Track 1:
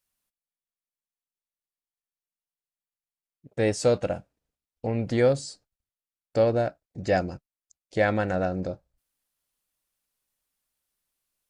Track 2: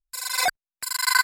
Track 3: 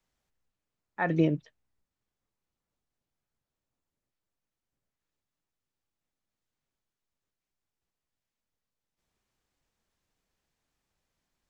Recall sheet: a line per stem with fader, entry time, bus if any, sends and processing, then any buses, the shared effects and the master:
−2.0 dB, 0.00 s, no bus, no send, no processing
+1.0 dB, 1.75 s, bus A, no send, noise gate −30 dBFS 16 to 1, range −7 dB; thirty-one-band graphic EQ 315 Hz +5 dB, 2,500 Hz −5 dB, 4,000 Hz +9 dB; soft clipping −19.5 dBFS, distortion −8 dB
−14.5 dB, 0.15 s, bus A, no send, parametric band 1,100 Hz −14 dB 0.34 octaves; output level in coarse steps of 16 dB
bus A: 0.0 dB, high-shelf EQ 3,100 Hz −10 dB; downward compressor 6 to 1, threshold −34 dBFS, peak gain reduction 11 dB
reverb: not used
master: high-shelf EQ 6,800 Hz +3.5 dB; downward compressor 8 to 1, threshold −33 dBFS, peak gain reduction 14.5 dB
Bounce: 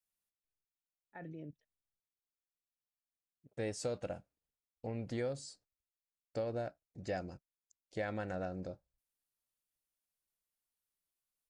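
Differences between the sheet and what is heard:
stem 1 −2.0 dB → −12.5 dB
stem 2: muted

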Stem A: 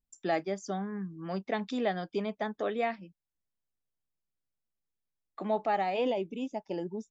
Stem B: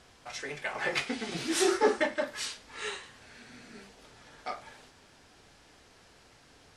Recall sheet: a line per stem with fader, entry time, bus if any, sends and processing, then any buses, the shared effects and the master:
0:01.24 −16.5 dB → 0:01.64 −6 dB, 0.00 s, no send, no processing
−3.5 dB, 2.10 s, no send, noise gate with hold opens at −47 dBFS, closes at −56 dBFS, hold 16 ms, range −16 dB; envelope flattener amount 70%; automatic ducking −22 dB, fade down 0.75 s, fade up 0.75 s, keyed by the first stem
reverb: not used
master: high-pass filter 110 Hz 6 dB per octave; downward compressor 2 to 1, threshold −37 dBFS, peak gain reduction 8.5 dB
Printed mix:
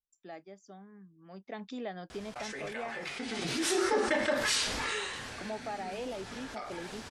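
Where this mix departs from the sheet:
stem B −3.5 dB → +8.0 dB
master: missing high-pass filter 110 Hz 6 dB per octave

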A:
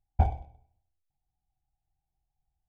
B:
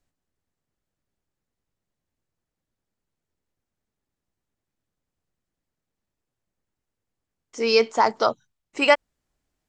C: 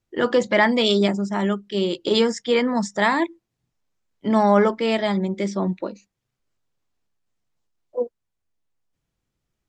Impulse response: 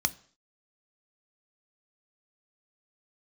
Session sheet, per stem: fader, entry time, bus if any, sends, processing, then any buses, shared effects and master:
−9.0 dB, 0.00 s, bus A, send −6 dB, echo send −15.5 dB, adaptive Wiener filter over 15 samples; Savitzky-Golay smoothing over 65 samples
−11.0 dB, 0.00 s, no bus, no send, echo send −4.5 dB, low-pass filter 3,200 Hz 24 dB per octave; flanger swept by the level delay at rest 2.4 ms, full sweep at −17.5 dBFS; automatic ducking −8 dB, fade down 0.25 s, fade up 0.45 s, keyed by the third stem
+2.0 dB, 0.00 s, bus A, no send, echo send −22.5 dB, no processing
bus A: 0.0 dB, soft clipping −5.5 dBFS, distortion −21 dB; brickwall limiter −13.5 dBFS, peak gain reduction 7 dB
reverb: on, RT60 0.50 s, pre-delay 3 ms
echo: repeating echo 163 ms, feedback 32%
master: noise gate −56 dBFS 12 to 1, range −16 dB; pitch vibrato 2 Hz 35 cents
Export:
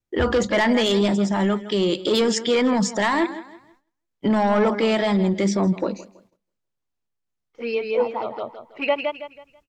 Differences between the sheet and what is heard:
stem B −11.0 dB → −2.0 dB
stem C +2.0 dB → +8.5 dB

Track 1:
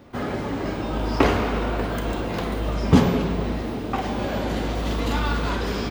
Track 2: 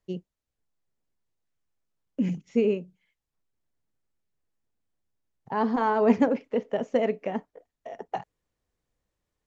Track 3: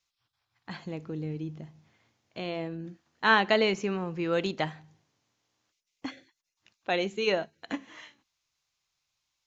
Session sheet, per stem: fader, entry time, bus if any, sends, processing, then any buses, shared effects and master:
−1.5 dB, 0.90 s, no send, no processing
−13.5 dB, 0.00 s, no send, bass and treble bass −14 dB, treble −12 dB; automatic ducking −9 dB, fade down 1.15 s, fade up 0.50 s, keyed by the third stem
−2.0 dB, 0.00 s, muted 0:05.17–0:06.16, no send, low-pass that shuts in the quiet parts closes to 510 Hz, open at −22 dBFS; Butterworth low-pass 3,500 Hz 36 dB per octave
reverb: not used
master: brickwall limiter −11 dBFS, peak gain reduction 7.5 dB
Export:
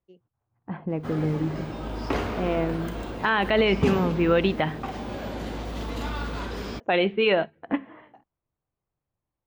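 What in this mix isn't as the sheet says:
stem 1 −1.5 dB → −7.5 dB
stem 3 −2.0 dB → +8.5 dB

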